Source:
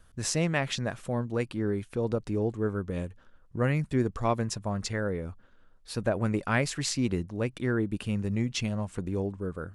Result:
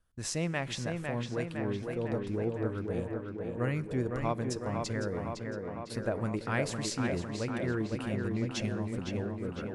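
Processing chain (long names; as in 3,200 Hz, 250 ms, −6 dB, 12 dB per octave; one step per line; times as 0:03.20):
noise gate −46 dBFS, range −12 dB
tape delay 506 ms, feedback 79%, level −3 dB, low-pass 3,000 Hz
on a send at −19.5 dB: convolution reverb RT60 2.0 s, pre-delay 3 ms
on the sum: level −5.5 dB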